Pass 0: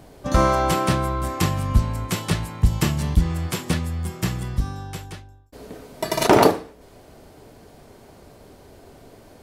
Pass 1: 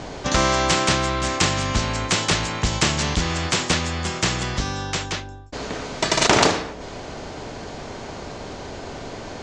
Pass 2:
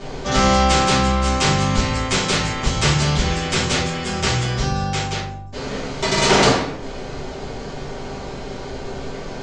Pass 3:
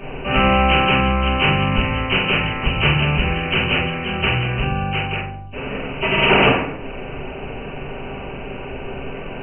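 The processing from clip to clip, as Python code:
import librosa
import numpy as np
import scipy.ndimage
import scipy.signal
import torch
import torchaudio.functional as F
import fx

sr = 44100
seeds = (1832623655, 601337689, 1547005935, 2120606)

y1 = scipy.signal.sosfilt(scipy.signal.ellip(4, 1.0, 60, 6900.0, 'lowpass', fs=sr, output='sos'), x)
y1 = fx.spectral_comp(y1, sr, ratio=2.0)
y1 = F.gain(torch.from_numpy(y1), 1.5).numpy()
y2 = fx.room_shoebox(y1, sr, seeds[0], volume_m3=47.0, walls='mixed', distance_m=1.6)
y2 = F.gain(torch.from_numpy(y2), -7.0).numpy()
y3 = fx.freq_compress(y2, sr, knee_hz=2200.0, ratio=4.0)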